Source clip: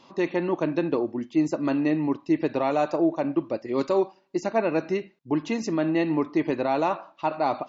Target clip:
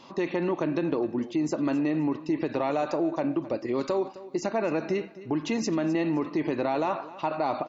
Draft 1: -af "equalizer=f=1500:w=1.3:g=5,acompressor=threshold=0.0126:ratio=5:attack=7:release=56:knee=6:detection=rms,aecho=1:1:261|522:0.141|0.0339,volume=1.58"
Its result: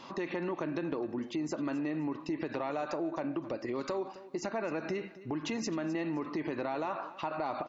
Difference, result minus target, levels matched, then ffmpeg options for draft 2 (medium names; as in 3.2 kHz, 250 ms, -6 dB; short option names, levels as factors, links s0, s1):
compression: peak gain reduction +8 dB; 2 kHz band +3.0 dB
-af "acompressor=threshold=0.0398:ratio=5:attack=7:release=56:knee=6:detection=rms,aecho=1:1:261|522:0.141|0.0339,volume=1.58"